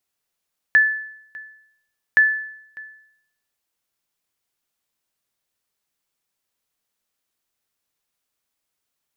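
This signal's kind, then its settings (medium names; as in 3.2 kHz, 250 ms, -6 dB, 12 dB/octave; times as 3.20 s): sonar ping 1.74 kHz, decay 0.72 s, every 1.42 s, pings 2, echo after 0.60 s, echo -23 dB -7.5 dBFS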